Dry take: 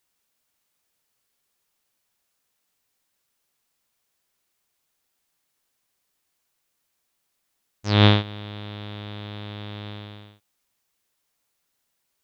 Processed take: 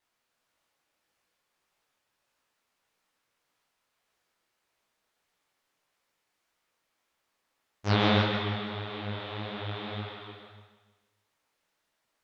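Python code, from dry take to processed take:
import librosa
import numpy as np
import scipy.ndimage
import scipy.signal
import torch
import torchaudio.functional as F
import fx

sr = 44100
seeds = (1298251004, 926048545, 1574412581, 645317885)

p1 = fx.lowpass(x, sr, hz=1700.0, slope=6)
p2 = fx.low_shelf(p1, sr, hz=370.0, db=-8.5)
p3 = fx.over_compress(p2, sr, threshold_db=-27.0, ratio=-0.5)
p4 = p2 + (p3 * 10.0 ** (0.0 / 20.0))
p5 = fx.wow_flutter(p4, sr, seeds[0], rate_hz=2.1, depth_cents=18.0)
p6 = p5 + fx.echo_feedback(p5, sr, ms=157, feedback_pct=42, wet_db=-7.5, dry=0)
p7 = fx.rev_gated(p6, sr, seeds[1], gate_ms=380, shape='flat', drr_db=5.5)
y = fx.detune_double(p7, sr, cents=58)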